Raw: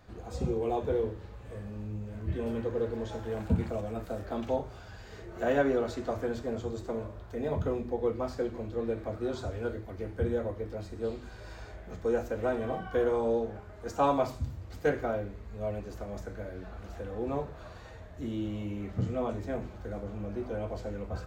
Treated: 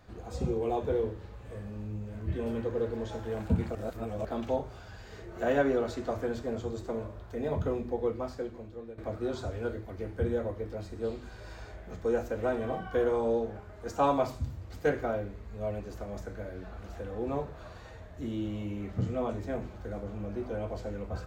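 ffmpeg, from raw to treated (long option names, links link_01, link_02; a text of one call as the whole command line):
ffmpeg -i in.wav -filter_complex "[0:a]asplit=4[link_01][link_02][link_03][link_04];[link_01]atrim=end=3.752[link_05];[link_02]atrim=start=3.748:end=4.252,asetpts=PTS-STARTPTS,areverse[link_06];[link_03]atrim=start=4.248:end=8.98,asetpts=PTS-STARTPTS,afade=type=out:start_time=3.702:duration=1.03:silence=0.16788[link_07];[link_04]atrim=start=8.98,asetpts=PTS-STARTPTS,afade=type=in:duration=0.004:curve=hsin:silence=0.16788[link_08];[link_05][link_06]acrossfade=duration=0.004:curve1=hsin:curve2=hsin[link_09];[link_07][link_08]concat=n=2:v=0:a=1[link_10];[link_09][link_10]acrossfade=duration=0.004:curve1=hsin:curve2=hsin" out.wav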